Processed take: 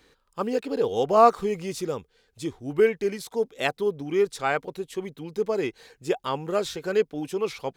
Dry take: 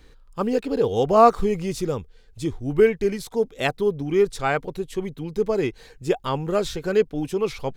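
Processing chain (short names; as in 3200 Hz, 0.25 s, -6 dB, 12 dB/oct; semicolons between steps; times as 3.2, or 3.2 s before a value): HPF 300 Hz 6 dB/oct; gain -1.5 dB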